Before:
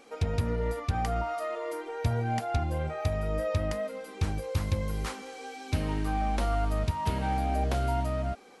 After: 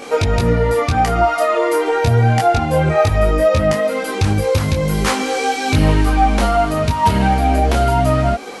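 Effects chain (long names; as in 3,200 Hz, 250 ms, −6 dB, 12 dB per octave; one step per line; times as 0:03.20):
low-shelf EQ 60 Hz −6.5 dB
downward compressor 3 to 1, threshold −35 dBFS, peak gain reduction 8.5 dB
boost into a limiter +26.5 dB
micro pitch shift up and down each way 12 cents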